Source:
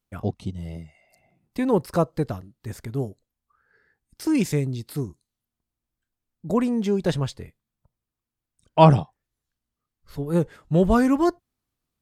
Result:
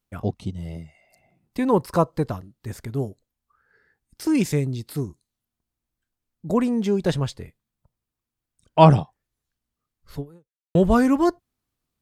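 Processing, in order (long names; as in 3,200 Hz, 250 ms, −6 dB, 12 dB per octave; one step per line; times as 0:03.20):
0:01.68–0:02.37: parametric band 1,000 Hz +7 dB 0.31 octaves
0:10.19–0:10.75: fade out exponential
level +1 dB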